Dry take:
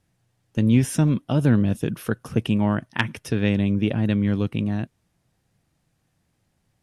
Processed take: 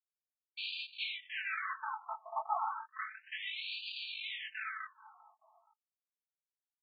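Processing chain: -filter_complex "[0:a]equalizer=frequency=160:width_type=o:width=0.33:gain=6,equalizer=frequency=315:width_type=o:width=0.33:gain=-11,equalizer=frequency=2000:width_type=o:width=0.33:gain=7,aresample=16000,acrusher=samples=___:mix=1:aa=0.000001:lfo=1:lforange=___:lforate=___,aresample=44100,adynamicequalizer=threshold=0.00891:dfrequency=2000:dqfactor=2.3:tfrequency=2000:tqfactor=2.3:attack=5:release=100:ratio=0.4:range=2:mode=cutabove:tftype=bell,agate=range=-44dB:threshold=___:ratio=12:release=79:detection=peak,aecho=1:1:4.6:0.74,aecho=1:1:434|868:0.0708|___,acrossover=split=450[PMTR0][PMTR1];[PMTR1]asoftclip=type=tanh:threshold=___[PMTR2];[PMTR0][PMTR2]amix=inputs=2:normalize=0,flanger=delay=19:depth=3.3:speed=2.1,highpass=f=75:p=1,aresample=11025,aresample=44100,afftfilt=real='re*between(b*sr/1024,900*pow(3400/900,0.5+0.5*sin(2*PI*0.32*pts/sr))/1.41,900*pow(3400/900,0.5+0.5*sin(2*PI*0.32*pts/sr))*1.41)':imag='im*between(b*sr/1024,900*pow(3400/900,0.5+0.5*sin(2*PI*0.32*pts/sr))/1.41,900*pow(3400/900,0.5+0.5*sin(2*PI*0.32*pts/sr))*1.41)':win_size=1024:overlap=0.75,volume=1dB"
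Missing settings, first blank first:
30, 30, 1.5, -42dB, 0.0262, -20dB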